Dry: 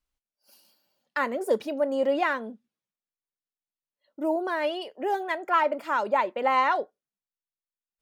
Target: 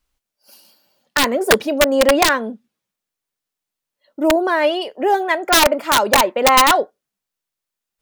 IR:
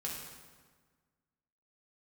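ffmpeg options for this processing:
-af "acontrast=55,aeval=exprs='(mod(3.35*val(0)+1,2)-1)/3.35':c=same,volume=5dB"

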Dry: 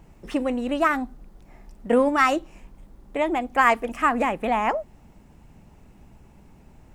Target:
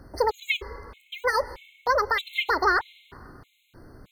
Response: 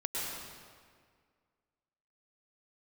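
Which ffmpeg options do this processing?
-filter_complex "[0:a]alimiter=limit=-13.5dB:level=0:latency=1:release=148,asetrate=74529,aresample=44100,asplit=2[a][b];[1:a]atrim=start_sample=2205[c];[b][c]afir=irnorm=-1:irlink=0,volume=-21.5dB[d];[a][d]amix=inputs=2:normalize=0,afftfilt=real='re*gt(sin(2*PI*1.6*pts/sr)*(1-2*mod(floor(b*sr/1024/2100),2)),0)':imag='im*gt(sin(2*PI*1.6*pts/sr)*(1-2*mod(floor(b*sr/1024/2100),2)),0)':win_size=1024:overlap=0.75,volume=2dB"

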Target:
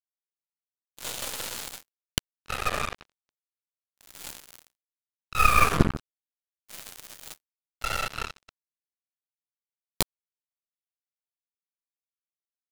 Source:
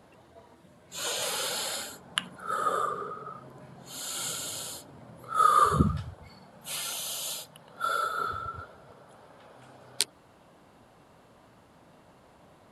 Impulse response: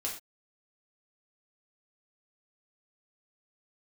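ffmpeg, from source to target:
-af "aeval=exprs='0.75*(cos(1*acos(clip(val(0)/0.75,-1,1)))-cos(1*PI/2))+0.266*(cos(6*acos(clip(val(0)/0.75,-1,1)))-cos(6*PI/2))':c=same,acrusher=bits=3:mix=0:aa=0.5,volume=-1dB"

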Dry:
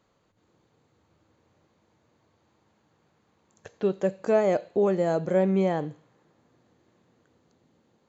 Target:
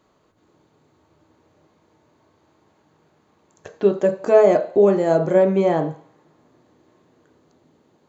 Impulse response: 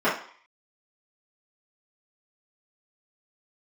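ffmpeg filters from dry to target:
-filter_complex "[0:a]asplit=2[a][b];[1:a]atrim=start_sample=2205,lowpass=1.8k[c];[b][c]afir=irnorm=-1:irlink=0,volume=-20.5dB[d];[a][d]amix=inputs=2:normalize=0,volume=5dB"

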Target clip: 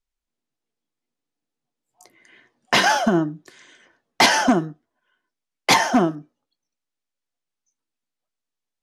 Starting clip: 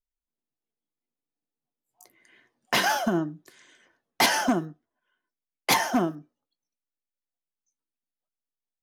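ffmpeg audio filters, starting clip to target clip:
-af "lowpass=8k,volume=6.5dB"

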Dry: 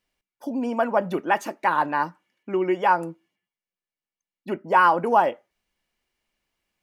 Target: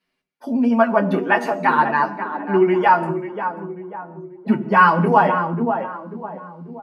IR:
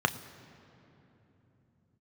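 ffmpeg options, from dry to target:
-filter_complex "[0:a]asplit=3[a][b][c];[a]afade=t=out:st=3.08:d=0.02[d];[b]asubboost=boost=6.5:cutoff=200,afade=t=in:st=3.08:d=0.02,afade=t=out:st=5.1:d=0.02[e];[c]afade=t=in:st=5.1:d=0.02[f];[d][e][f]amix=inputs=3:normalize=0,asplit=2[g][h];[h]adelay=540,lowpass=f=1.2k:p=1,volume=-6.5dB,asplit=2[i][j];[j]adelay=540,lowpass=f=1.2k:p=1,volume=0.46,asplit=2[k][l];[l]adelay=540,lowpass=f=1.2k:p=1,volume=0.46,asplit=2[m][n];[n]adelay=540,lowpass=f=1.2k:p=1,volume=0.46,asplit=2[o][p];[p]adelay=540,lowpass=f=1.2k:p=1,volume=0.46[q];[g][i][k][m][o][q]amix=inputs=6:normalize=0[r];[1:a]atrim=start_sample=2205,afade=t=out:st=0.38:d=0.01,atrim=end_sample=17199,asetrate=66150,aresample=44100[s];[r][s]afir=irnorm=-1:irlink=0,asplit=2[t][u];[u]adelay=7.8,afreqshift=-0.78[v];[t][v]amix=inputs=2:normalize=1"

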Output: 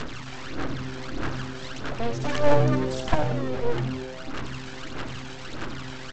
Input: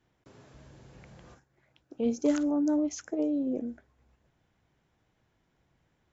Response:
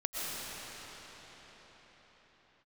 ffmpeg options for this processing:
-filter_complex "[0:a]aeval=exprs='val(0)+0.5*0.01*sgn(val(0))':c=same,highpass=120,equalizer=f=150:t=q:w=4:g=6,equalizer=f=310:t=q:w=4:g=-6,equalizer=f=1.4k:t=q:w=4:g=9,lowpass=f=4.8k:w=0.5412,lowpass=f=4.8k:w=1.3066,aphaser=in_gain=1:out_gain=1:delay=1.3:decay=0.79:speed=1.6:type=sinusoidal,equalizer=f=690:t=o:w=0.78:g=-6.5,aresample=16000,aeval=exprs='abs(val(0))':c=same,aresample=44100,asplit=9[a][b][c][d][e][f][g][h][i];[b]adelay=91,afreqshift=-130,volume=-8.5dB[j];[c]adelay=182,afreqshift=-260,volume=-12.8dB[k];[d]adelay=273,afreqshift=-390,volume=-17.1dB[l];[e]adelay=364,afreqshift=-520,volume=-21.4dB[m];[f]adelay=455,afreqshift=-650,volume=-25.7dB[n];[g]adelay=546,afreqshift=-780,volume=-30dB[o];[h]adelay=637,afreqshift=-910,volume=-34.3dB[p];[i]adelay=728,afreqshift=-1040,volume=-38.6dB[q];[a][j][k][l][m][n][o][p][q]amix=inputs=9:normalize=0,volume=6dB"

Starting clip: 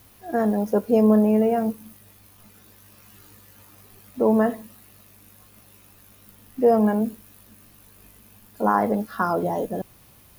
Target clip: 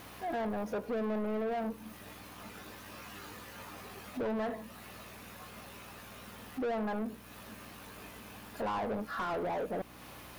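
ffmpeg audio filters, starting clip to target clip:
-filter_complex "[0:a]acompressor=threshold=-40dB:ratio=2,aeval=exprs='val(0)+0.00224*(sin(2*PI*60*n/s)+sin(2*PI*2*60*n/s)/2+sin(2*PI*3*60*n/s)/3+sin(2*PI*4*60*n/s)/4+sin(2*PI*5*60*n/s)/5)':c=same,asplit=2[a][b];[b]highpass=f=720:p=1,volume=26dB,asoftclip=type=tanh:threshold=-20.5dB[c];[a][c]amix=inputs=2:normalize=0,lowpass=f=1.8k:p=1,volume=-6dB,volume=-6.5dB"

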